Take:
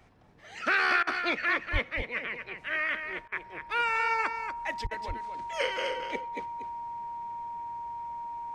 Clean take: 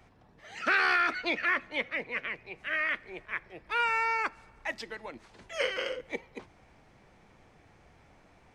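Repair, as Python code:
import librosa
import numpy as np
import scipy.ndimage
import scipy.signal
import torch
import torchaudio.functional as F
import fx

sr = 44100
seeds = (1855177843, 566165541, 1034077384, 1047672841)

y = fx.notch(x, sr, hz=940.0, q=30.0)
y = fx.highpass(y, sr, hz=140.0, slope=24, at=(1.72, 1.84), fade=0.02)
y = fx.highpass(y, sr, hz=140.0, slope=24, at=(4.83, 4.95), fade=0.02)
y = fx.fix_interpolate(y, sr, at_s=(1.03, 3.28, 4.87), length_ms=39.0)
y = fx.fix_echo_inverse(y, sr, delay_ms=239, level_db=-7.5)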